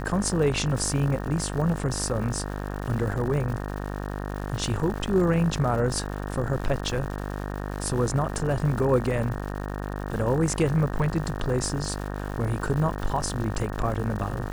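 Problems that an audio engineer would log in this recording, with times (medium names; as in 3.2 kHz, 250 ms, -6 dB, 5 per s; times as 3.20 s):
buzz 50 Hz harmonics 37 -32 dBFS
crackle 230 per s -34 dBFS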